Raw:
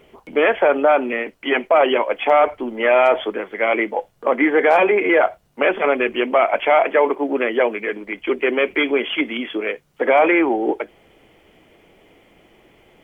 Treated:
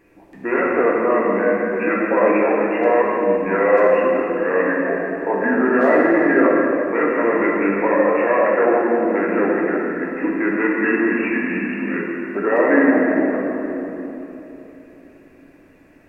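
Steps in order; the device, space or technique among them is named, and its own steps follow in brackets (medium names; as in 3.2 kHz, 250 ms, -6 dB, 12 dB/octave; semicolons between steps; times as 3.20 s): slowed and reverbed (tape speed -19%; reverberation RT60 3.4 s, pre-delay 3 ms, DRR -4.5 dB); trim -6 dB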